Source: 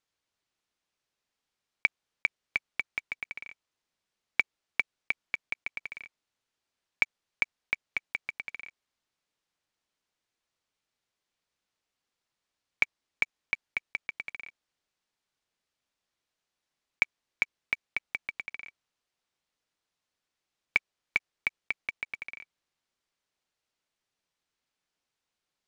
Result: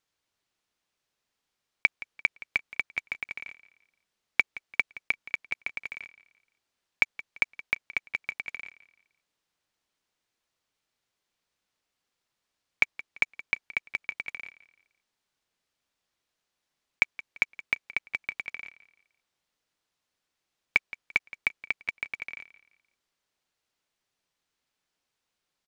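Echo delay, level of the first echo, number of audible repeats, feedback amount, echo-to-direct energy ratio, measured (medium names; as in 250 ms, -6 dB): 171 ms, -18.0 dB, 2, 34%, -17.5 dB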